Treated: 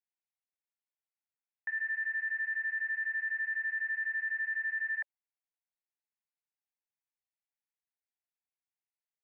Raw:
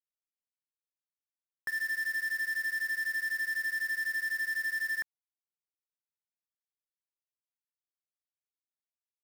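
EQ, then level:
Chebyshev band-pass filter 570–2,800 Hz, order 5
phaser with its sweep stopped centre 810 Hz, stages 8
0.0 dB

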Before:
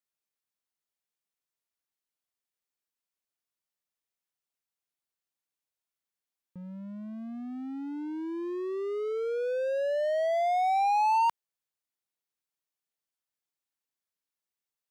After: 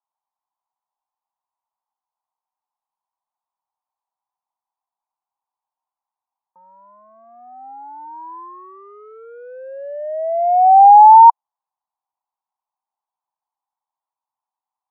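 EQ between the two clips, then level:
high-pass with resonance 790 Hz, resonance Q 5.8
low-pass with resonance 1,000 Hz, resonance Q 6.2
high-frequency loss of the air 140 metres
−4.0 dB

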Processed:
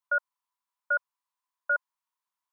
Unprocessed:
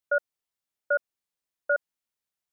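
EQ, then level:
high-pass with resonance 1,000 Hz, resonance Q 11
−4.5 dB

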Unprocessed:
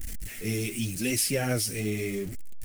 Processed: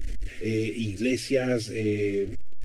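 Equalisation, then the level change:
head-to-tape spacing loss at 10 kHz 25 dB
mains-hum notches 60/120 Hz
phaser with its sweep stopped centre 390 Hz, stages 4
+8.0 dB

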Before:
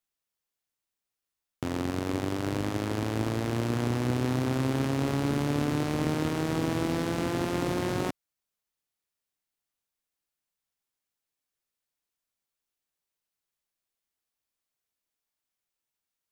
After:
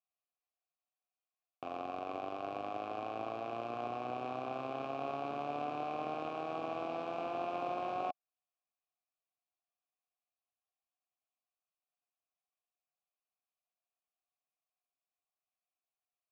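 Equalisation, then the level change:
formant filter a
low-pass filter 6,300 Hz 12 dB per octave
+4.5 dB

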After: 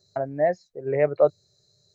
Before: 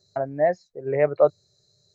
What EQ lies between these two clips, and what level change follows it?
dynamic equaliser 1,100 Hz, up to −4 dB, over −32 dBFS, Q 1.3
0.0 dB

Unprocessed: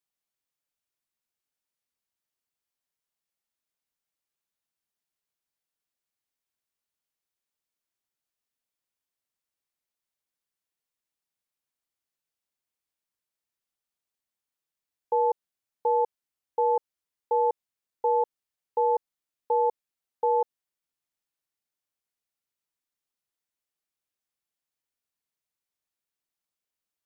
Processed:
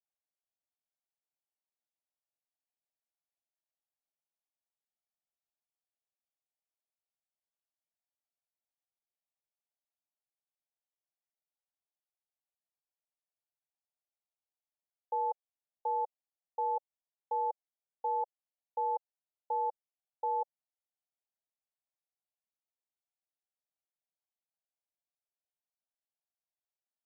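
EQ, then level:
flat-topped band-pass 700 Hz, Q 2.3
−3.5 dB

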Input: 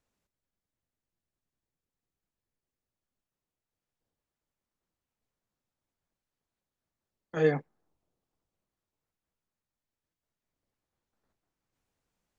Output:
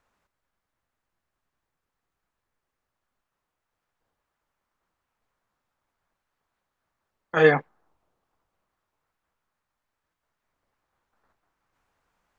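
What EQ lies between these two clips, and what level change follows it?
dynamic equaliser 3,200 Hz, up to +7 dB, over −54 dBFS, Q 1.7
low-shelf EQ 83 Hz +7 dB
parametric band 1,200 Hz +14.5 dB 2.4 octaves
+1.0 dB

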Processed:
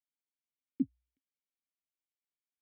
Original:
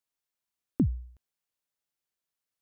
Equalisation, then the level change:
formant filter i
parametric band 71 Hz −14.5 dB 1 octave
0.0 dB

